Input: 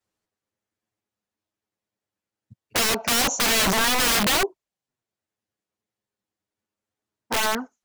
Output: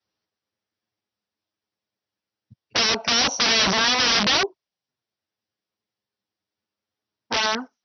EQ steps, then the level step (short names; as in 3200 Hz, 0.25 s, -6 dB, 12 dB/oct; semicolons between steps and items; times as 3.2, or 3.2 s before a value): HPF 61 Hz; Chebyshev low-pass 5800 Hz, order 8; high shelf 4300 Hz +11 dB; 0.0 dB